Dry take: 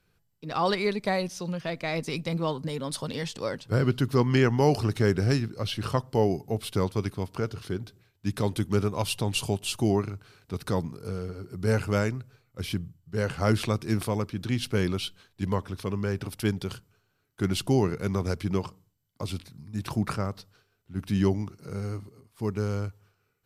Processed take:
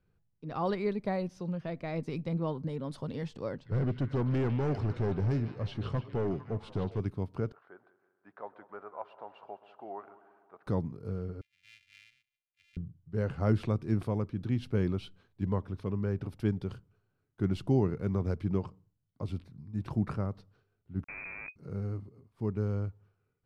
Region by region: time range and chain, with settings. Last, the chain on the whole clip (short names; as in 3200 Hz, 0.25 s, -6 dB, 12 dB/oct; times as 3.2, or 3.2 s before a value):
3.51–7 LPF 8000 Hz 24 dB/oct + hard clip -23 dBFS + delay with a stepping band-pass 0.15 s, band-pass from 3100 Hz, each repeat -0.7 oct, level -4.5 dB
7.52–10.67 Chebyshev band-pass 670–1600 Hz + multi-head echo 64 ms, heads second and third, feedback 59%, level -18.5 dB
11.41–12.77 sample sorter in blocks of 128 samples + elliptic high-pass 2300 Hz, stop band 60 dB + tilt -4.5 dB/oct
21.04–21.56 negative-ratio compressor -29 dBFS + Schmitt trigger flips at -30 dBFS + inverted band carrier 2500 Hz
whole clip: LPF 1200 Hz 6 dB/oct; low shelf 410 Hz +5 dB; gain -6.5 dB